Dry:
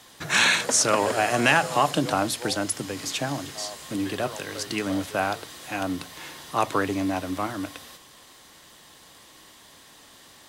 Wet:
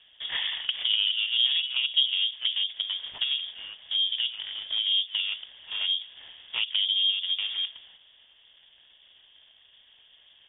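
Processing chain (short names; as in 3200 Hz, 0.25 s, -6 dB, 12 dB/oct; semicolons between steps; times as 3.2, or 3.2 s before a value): median filter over 41 samples; treble ducked by the level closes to 720 Hz, closed at -25.5 dBFS; inverted band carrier 3500 Hz; gain +2.5 dB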